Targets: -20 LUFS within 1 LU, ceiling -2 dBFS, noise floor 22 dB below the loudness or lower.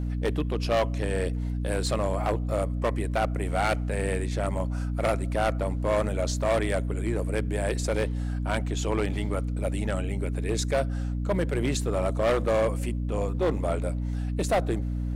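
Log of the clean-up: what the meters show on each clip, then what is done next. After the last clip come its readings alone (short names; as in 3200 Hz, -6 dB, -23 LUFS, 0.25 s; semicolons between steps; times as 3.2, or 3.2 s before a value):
clipped 2.0%; flat tops at -19.0 dBFS; hum 60 Hz; harmonics up to 300 Hz; hum level -27 dBFS; loudness -28.0 LUFS; peak -19.0 dBFS; loudness target -20.0 LUFS
-> clip repair -19 dBFS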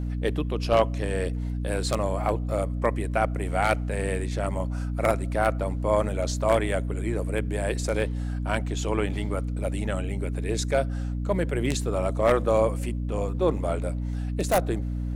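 clipped 0.0%; hum 60 Hz; harmonics up to 300 Hz; hum level -27 dBFS
-> de-hum 60 Hz, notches 5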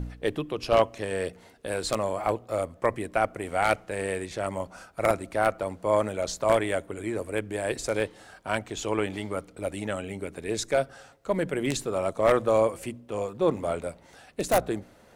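hum none; loudness -28.5 LUFS; peak -8.5 dBFS; loudness target -20.0 LUFS
-> gain +8.5 dB; limiter -2 dBFS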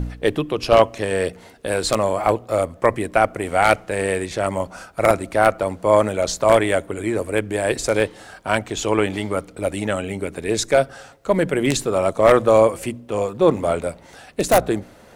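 loudness -20.0 LUFS; peak -2.0 dBFS; noise floor -47 dBFS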